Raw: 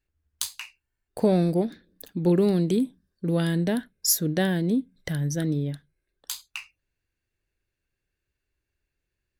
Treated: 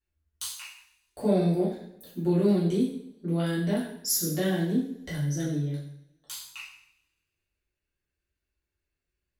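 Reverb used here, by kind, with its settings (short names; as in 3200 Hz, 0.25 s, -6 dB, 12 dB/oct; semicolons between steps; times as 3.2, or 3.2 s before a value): two-slope reverb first 0.64 s, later 1.7 s, from -24 dB, DRR -9 dB; gain -12.5 dB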